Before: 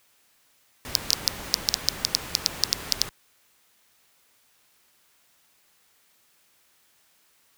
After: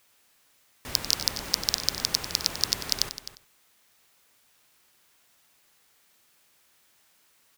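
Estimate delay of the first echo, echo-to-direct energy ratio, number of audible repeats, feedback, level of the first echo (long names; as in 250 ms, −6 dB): 94 ms, −10.5 dB, 3, repeats not evenly spaced, −13.0 dB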